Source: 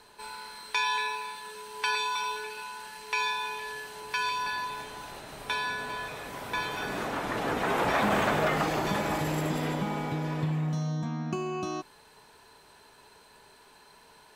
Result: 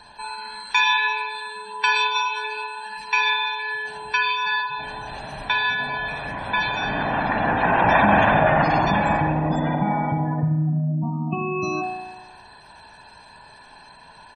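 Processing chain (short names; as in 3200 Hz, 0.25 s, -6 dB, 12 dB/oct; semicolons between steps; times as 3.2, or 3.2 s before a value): spectral gate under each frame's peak -20 dB strong; comb 1.2 ms, depth 64%; reverb RT60 1.2 s, pre-delay 49 ms, DRR 3.5 dB; gain +6.5 dB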